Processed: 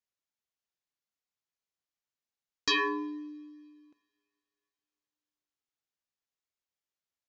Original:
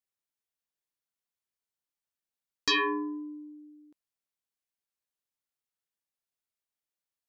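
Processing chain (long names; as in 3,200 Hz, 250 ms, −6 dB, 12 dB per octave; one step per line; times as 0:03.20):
coupled-rooms reverb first 0.59 s, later 2.8 s, from −20 dB, DRR 16 dB
downsampling to 16,000 Hz
level −1.5 dB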